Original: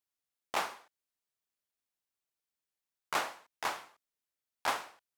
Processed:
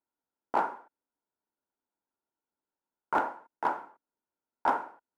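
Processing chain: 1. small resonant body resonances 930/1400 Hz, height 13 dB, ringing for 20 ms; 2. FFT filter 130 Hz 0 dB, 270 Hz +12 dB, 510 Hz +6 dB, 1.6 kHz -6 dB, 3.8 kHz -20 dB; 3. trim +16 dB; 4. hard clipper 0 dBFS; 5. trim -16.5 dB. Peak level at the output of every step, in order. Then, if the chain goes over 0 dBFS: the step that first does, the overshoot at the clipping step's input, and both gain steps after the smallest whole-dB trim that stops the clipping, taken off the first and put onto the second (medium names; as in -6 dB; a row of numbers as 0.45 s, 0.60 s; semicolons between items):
-11.0 dBFS, -11.5 dBFS, +4.5 dBFS, 0.0 dBFS, -16.5 dBFS; step 3, 4.5 dB; step 3 +11 dB, step 5 -11.5 dB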